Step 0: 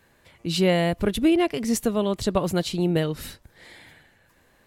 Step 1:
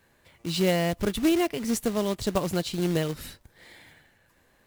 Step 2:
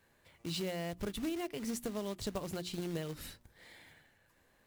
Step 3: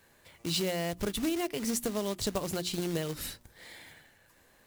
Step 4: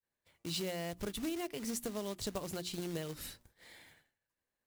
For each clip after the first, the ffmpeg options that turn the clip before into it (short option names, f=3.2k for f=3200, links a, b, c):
-af "acrusher=bits=3:mode=log:mix=0:aa=0.000001,volume=-3.5dB"
-af "acompressor=threshold=-28dB:ratio=5,bandreject=f=60:t=h:w=6,bandreject=f=120:t=h:w=6,bandreject=f=180:t=h:w=6,bandreject=f=240:t=h:w=6,bandreject=f=300:t=h:w=6,bandreject=f=360:t=h:w=6,volume=-6dB"
-af "bass=f=250:g=-2,treble=f=4k:g=4,volume=6.5dB"
-af "agate=range=-33dB:threshold=-49dB:ratio=3:detection=peak,volume=-7dB"